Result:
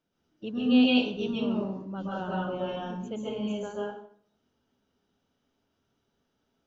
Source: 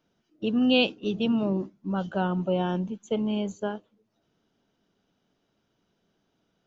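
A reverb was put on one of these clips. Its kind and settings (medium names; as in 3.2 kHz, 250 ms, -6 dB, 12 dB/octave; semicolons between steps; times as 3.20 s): plate-style reverb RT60 0.58 s, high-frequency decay 0.8×, pre-delay 115 ms, DRR -5.5 dB; trim -9 dB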